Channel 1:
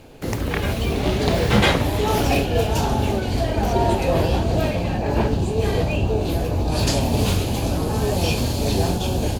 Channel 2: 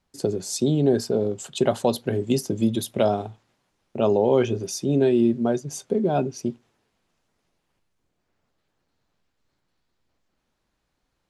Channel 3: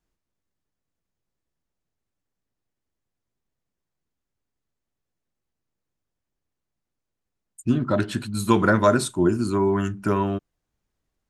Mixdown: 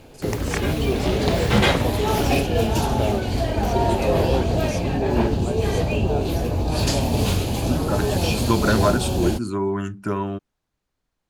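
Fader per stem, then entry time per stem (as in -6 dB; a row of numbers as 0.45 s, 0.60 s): -1.0 dB, -6.5 dB, -2.5 dB; 0.00 s, 0.00 s, 0.00 s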